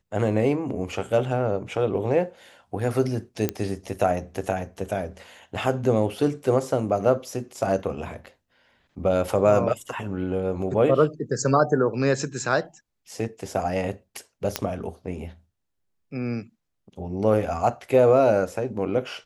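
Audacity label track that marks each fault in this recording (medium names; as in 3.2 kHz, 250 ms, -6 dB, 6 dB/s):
3.490000	3.490000	pop -9 dBFS
14.560000	14.560000	pop -6 dBFS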